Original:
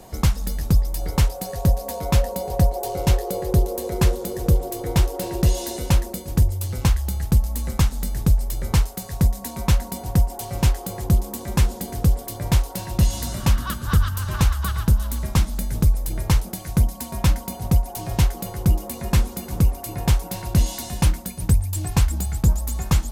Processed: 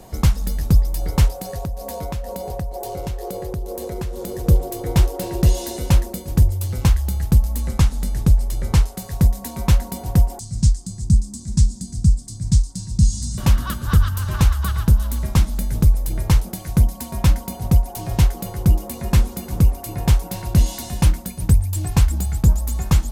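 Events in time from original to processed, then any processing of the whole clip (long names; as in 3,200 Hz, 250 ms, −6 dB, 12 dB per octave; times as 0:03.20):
0:01.35–0:04.47: downward compressor 12 to 1, threshold −25 dBFS
0:07.60–0:08.99: low-pass filter 12,000 Hz
0:10.39–0:13.38: drawn EQ curve 210 Hz 0 dB, 300 Hz −10 dB, 470 Hz −27 dB, 980 Hz −21 dB, 1,600 Hz −19 dB, 2,800 Hz −18 dB, 4,700 Hz +1 dB, 8,400 Hz +5 dB, 13,000 Hz −24 dB
whole clip: low-shelf EQ 260 Hz +3.5 dB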